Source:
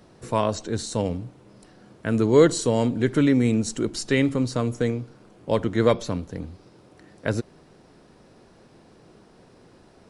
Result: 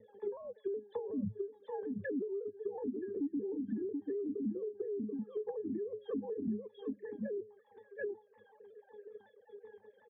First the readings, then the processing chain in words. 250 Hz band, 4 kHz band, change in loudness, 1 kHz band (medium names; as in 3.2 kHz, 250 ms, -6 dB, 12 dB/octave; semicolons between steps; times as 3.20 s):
-14.5 dB, under -30 dB, -16.5 dB, -22.0 dB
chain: formants replaced by sine waves; resonant low shelf 360 Hz +9 dB, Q 1.5; pitch-class resonator G#, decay 0.25 s; in parallel at -5 dB: hard clipper -26.5 dBFS, distortion -4 dB; on the sum: compression 12:1, threshold -41 dBFS, peak gain reduction 27 dB; on a send: delay 731 ms -10 dB; on the sum: peak limiter -44 dBFS, peak gain reduction 10.5 dB; reverb removal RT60 0.63 s; low-pass that closes with the level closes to 340 Hz, closed at -48.5 dBFS; vibrato with a chosen wave saw down 5.4 Hz, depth 100 cents; trim +16.5 dB